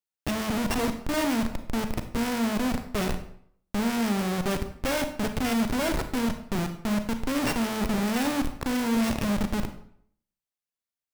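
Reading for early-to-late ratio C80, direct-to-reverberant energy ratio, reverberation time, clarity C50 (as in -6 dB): 13.0 dB, 7.5 dB, 0.60 s, 9.5 dB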